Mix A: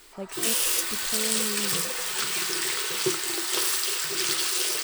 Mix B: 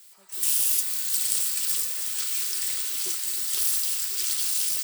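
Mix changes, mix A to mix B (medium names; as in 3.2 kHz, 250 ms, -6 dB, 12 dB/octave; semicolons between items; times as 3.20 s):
speech -8.5 dB; master: add pre-emphasis filter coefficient 0.9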